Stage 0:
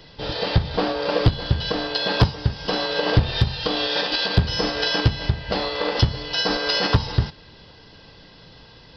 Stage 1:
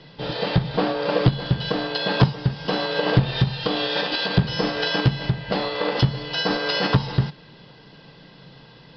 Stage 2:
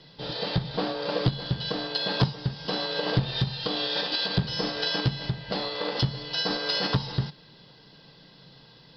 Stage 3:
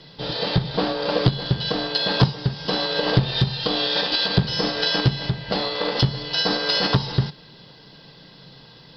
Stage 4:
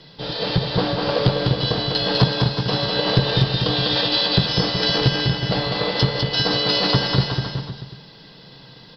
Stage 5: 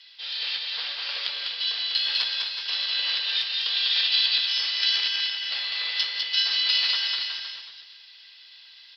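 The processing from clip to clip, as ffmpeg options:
-af "lowpass=4.1k,lowshelf=f=110:t=q:w=3:g=-7.5"
-af "aexciter=amount=2.7:drive=3.6:freq=3.6k,volume=-7dB"
-af "tremolo=f=260:d=0.333,volume=7.5dB"
-af "aecho=1:1:200|370|514.5|637.3|741.7:0.631|0.398|0.251|0.158|0.1"
-af "flanger=delay=8.9:depth=8.3:regen=-67:speed=0.75:shape=triangular,highpass=f=2.4k:t=q:w=1.9"

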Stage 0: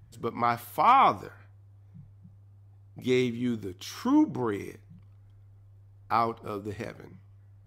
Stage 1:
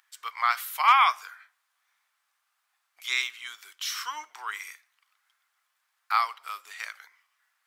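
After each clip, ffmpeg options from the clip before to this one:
-af "highpass=f=1.3k:w=0.5412,highpass=f=1.3k:w=1.3066,volume=8.5dB"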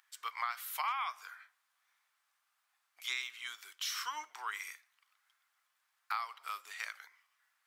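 -af "acompressor=threshold=-30dB:ratio=6,volume=-3.5dB"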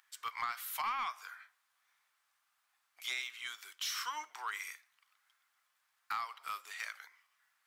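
-af "asoftclip=type=tanh:threshold=-28.5dB,volume=1dB"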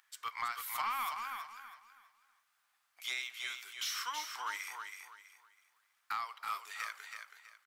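-af "aecho=1:1:325|650|975|1300:0.501|0.145|0.0421|0.0122"

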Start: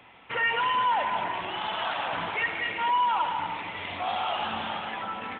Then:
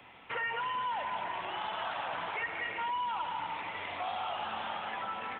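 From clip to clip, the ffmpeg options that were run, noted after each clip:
-filter_complex "[0:a]acrossover=split=180|400|2100[a][b][c][d];[a]acompressor=threshold=-58dB:ratio=4[e];[b]acompressor=threshold=-59dB:ratio=4[f];[c]acompressor=threshold=-33dB:ratio=4[g];[d]acompressor=threshold=-46dB:ratio=4[h];[e][f][g][h]amix=inputs=4:normalize=0,volume=-1.5dB"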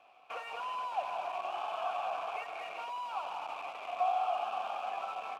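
-filter_complex "[0:a]acrusher=bits=7:dc=4:mix=0:aa=0.000001,asplit=3[a][b][c];[a]bandpass=f=730:t=q:w=8,volume=0dB[d];[b]bandpass=f=1.09k:t=q:w=8,volume=-6dB[e];[c]bandpass=f=2.44k:t=q:w=8,volume=-9dB[f];[d][e][f]amix=inputs=3:normalize=0,volume=8.5dB"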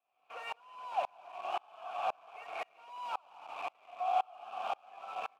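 -af "aeval=exprs='val(0)*pow(10,-33*if(lt(mod(-1.9*n/s,1),2*abs(-1.9)/1000),1-mod(-1.9*n/s,1)/(2*abs(-1.9)/1000),(mod(-1.9*n/s,1)-2*abs(-1.9)/1000)/(1-2*abs(-1.9)/1000))/20)':c=same,volume=5.5dB"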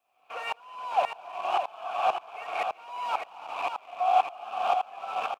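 -af "aecho=1:1:606:0.473,volume=8.5dB"

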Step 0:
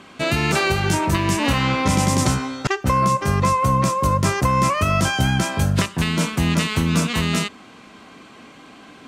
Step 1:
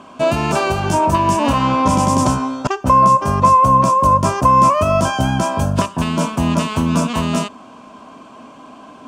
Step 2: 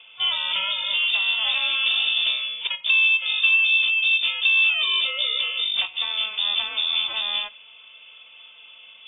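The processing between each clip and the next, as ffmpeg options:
-af "equalizer=f=250:t=o:w=0.33:g=7,equalizer=f=630:t=o:w=0.33:g=11,equalizer=f=1k:t=o:w=0.33:g=11,equalizer=f=2k:t=o:w=0.33:g=-11,equalizer=f=4k:t=o:w=0.33:g=-7,equalizer=f=12.5k:t=o:w=0.33:g=-7"
-af "lowpass=f=3.1k:t=q:w=0.5098,lowpass=f=3.1k:t=q:w=0.6013,lowpass=f=3.1k:t=q:w=0.9,lowpass=f=3.1k:t=q:w=2.563,afreqshift=-3700,volume=-7.5dB" -ar 16000 -c:a aac -b:a 16k

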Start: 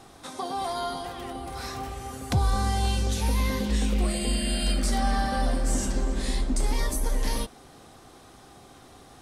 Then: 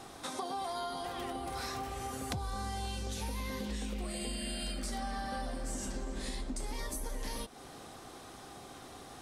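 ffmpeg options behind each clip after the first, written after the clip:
-af "lowshelf=f=160:g=-5.5,acompressor=threshold=-37dB:ratio=6,volume=1.5dB"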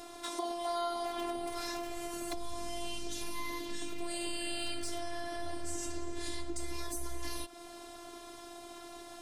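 -af "afftfilt=real='hypot(re,im)*cos(PI*b)':imag='0':win_size=512:overlap=0.75,asoftclip=type=hard:threshold=-27dB,volume=4.5dB"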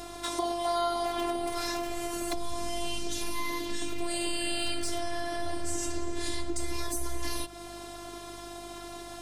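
-af "aeval=exprs='val(0)+0.00112*(sin(2*PI*50*n/s)+sin(2*PI*2*50*n/s)/2+sin(2*PI*3*50*n/s)/3+sin(2*PI*4*50*n/s)/4+sin(2*PI*5*50*n/s)/5)':c=same,volume=6dB"

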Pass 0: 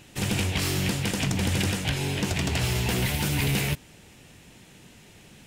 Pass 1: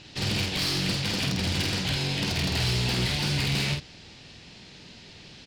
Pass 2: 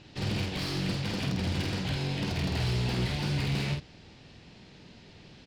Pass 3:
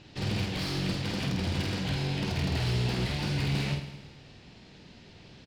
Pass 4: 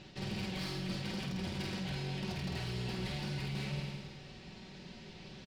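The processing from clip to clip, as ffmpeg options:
-filter_complex "[0:a]lowpass=f=4.6k:t=q:w=3.8,asoftclip=type=tanh:threshold=-24dB,asplit=2[a][b];[b]adelay=49,volume=-4dB[c];[a][c]amix=inputs=2:normalize=0"
-af "highshelf=f=2.1k:g=-10,volume=-1.5dB"
-af "aecho=1:1:107|214|321|428|535|642:0.266|0.146|0.0805|0.0443|0.0243|0.0134"
-af "aecho=1:1:5.3:0.52,areverse,acompressor=threshold=-36dB:ratio=6,areverse"

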